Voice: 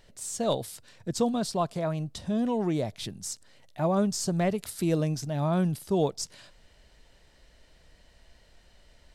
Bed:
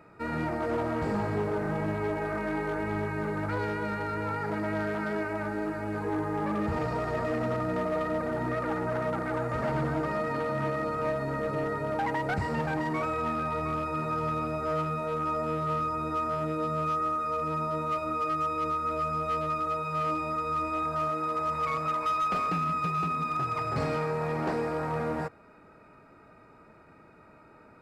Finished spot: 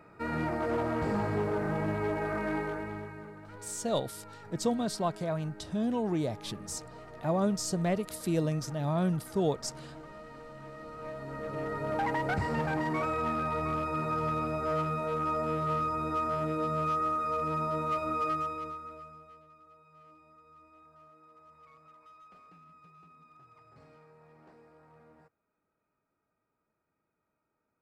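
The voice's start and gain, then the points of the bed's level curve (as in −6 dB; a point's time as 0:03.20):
3.45 s, −3.0 dB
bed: 0:02.56 −1 dB
0:03.42 −17.5 dB
0:10.60 −17.5 dB
0:11.96 −1 dB
0:18.30 −1 dB
0:19.47 −28 dB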